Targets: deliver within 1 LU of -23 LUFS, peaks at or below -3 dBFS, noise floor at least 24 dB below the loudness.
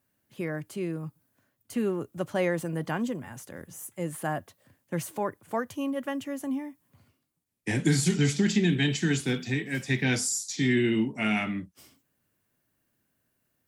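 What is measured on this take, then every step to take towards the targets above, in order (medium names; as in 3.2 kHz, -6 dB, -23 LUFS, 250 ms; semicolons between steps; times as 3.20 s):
loudness -29.0 LUFS; peak level -11.0 dBFS; loudness target -23.0 LUFS
-> trim +6 dB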